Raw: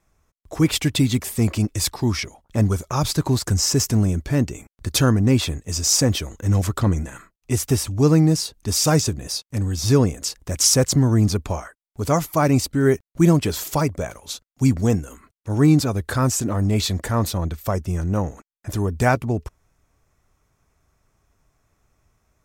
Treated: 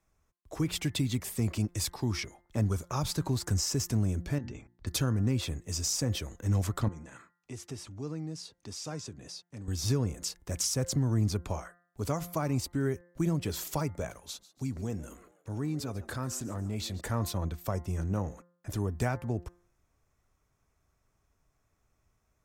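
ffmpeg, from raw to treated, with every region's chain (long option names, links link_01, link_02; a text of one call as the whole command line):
ffmpeg -i in.wav -filter_complex "[0:a]asettb=1/sr,asplit=3[link_01][link_02][link_03];[link_01]atrim=end=4.384[link_04];[link_02]atrim=start=4.38:end=4.87,asetpts=PTS-STARTPTS,afade=type=in:duration=0.004:curve=qsin,afade=type=out:start_time=0.486:duration=0.004:curve=qsin,lowpass=frequency=5300:width=0.5412,lowpass=frequency=5300:width=1.3066,bandreject=frequency=60:width_type=h:width=6,bandreject=frequency=120:width_type=h:width=6,bandreject=frequency=180:width_type=h:width=6,bandreject=frequency=240:width_type=h:width=6,bandreject=frequency=300:width_type=h:width=6,acompressor=threshold=-27dB:ratio=3:attack=3.2:release=140:knee=1:detection=peak[link_05];[link_03]atrim=start=4.866[link_06];[link_04][link_05]acrossfade=duration=0.004:curve1=hsin:curve2=qsin[link_07];[link_07][link_06]acrossfade=duration=0.004:curve1=qsin:curve2=hsin,asettb=1/sr,asplit=3[link_08][link_09][link_10];[link_08]atrim=end=6.884[link_11];[link_09]atrim=start=6.88:end=9.68,asetpts=PTS-STARTPTS,afade=type=in:duration=0.004:curve=qsin,afade=type=out:start_time=2.796:duration=0.004:curve=qsin,acompressor=threshold=-36dB:ratio=2:attack=3.2:release=140:knee=1:detection=peak,highpass=110,lowpass=7400[link_12];[link_10]atrim=start=9.676[link_13];[link_11][link_12]acrossfade=duration=0.004:curve1=hsin:curve2=qsin[link_14];[link_14][link_13]acrossfade=duration=0.004:curve1=qsin:curve2=hsin,asettb=1/sr,asplit=3[link_15][link_16][link_17];[link_15]atrim=end=14.174[link_18];[link_16]atrim=start=14.17:end=17.01,asetpts=PTS-STARTPTS,afade=type=in:duration=0.004:curve=qsin,afade=type=out:start_time=2.836:duration=0.004:curve=qsin,acompressor=threshold=-28dB:ratio=2:attack=3.2:release=140:knee=1:detection=peak,asplit=4[link_19][link_20][link_21][link_22];[link_20]adelay=143,afreqshift=120,volume=-18dB[link_23];[link_21]adelay=286,afreqshift=240,volume=-26.6dB[link_24];[link_22]adelay=429,afreqshift=360,volume=-35.3dB[link_25];[link_19][link_23][link_24][link_25]amix=inputs=4:normalize=0,atrim=end_sample=125244[link_26];[link_17]atrim=start=17.006[link_27];[link_18][link_26]acrossfade=duration=0.004:curve1=hsin:curve2=qsin[link_28];[link_28][link_27]acrossfade=duration=0.004:curve1=qsin:curve2=hsin,bandreject=frequency=174.9:width_type=h:width=4,bandreject=frequency=349.8:width_type=h:width=4,bandreject=frequency=524.7:width_type=h:width=4,bandreject=frequency=699.6:width_type=h:width=4,bandreject=frequency=874.5:width_type=h:width=4,bandreject=frequency=1049.4:width_type=h:width=4,bandreject=frequency=1224.3:width_type=h:width=4,bandreject=frequency=1399.2:width_type=h:width=4,bandreject=frequency=1574.1:width_type=h:width=4,bandreject=frequency=1749:width_type=h:width=4,bandreject=frequency=1923.9:width_type=h:width=4,bandreject=frequency=2098.8:width_type=h:width=4,acrossover=split=130[link_29][link_30];[link_30]acompressor=threshold=-20dB:ratio=5[link_31];[link_29][link_31]amix=inputs=2:normalize=0,volume=-8.5dB" out.wav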